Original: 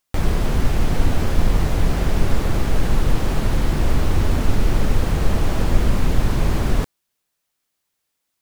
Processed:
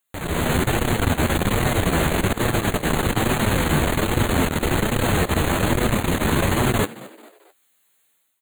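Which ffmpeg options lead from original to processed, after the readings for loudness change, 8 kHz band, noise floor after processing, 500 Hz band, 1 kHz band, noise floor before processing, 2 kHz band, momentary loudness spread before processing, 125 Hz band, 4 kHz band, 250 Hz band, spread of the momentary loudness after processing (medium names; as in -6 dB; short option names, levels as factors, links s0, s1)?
+1.0 dB, +7.0 dB, -65 dBFS, +4.5 dB, +5.5 dB, -76 dBFS, +7.5 dB, 2 LU, -1.0 dB, +5.5 dB, +3.0 dB, 2 LU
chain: -filter_complex "[0:a]flanger=delay=8.1:depth=4.8:regen=33:speed=1.2:shape=sinusoidal,highshelf=f=5100:g=5.5,asoftclip=type=tanh:threshold=0.15,asuperstop=centerf=5300:order=8:qfactor=2.5,equalizer=f=1800:t=o:w=0.77:g=2.5,dynaudnorm=f=130:g=5:m=3.98,highpass=f=160:p=1,asplit=4[s0][s1][s2][s3];[s1]adelay=220,afreqshift=100,volume=0.112[s4];[s2]adelay=440,afreqshift=200,volume=0.0473[s5];[s3]adelay=660,afreqshift=300,volume=0.0197[s6];[s0][s4][s5][s6]amix=inputs=4:normalize=0"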